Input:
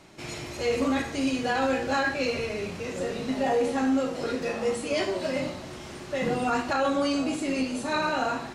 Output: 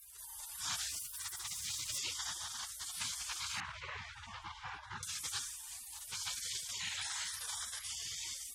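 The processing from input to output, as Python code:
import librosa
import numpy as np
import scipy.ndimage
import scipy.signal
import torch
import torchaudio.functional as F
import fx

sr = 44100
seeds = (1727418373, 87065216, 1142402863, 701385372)

y = fx.lower_of_two(x, sr, delay_ms=2.3, at=(0.88, 1.97), fade=0.02)
y = fx.low_shelf(y, sr, hz=240.0, db=-9.0)
y = fx.whisperise(y, sr, seeds[0])
y = scipy.signal.sosfilt(scipy.signal.butter(2, 180.0, 'highpass', fs=sr, output='sos'), y)
y = fx.rotary(y, sr, hz=0.9)
y = fx.spec_gate(y, sr, threshold_db=-30, keep='weak')
y = fx.lowpass(y, sr, hz=1500.0, slope=12, at=(3.6, 5.03))
y = fx.env_flatten(y, sr, amount_pct=50)
y = y * 10.0 ** (8.5 / 20.0)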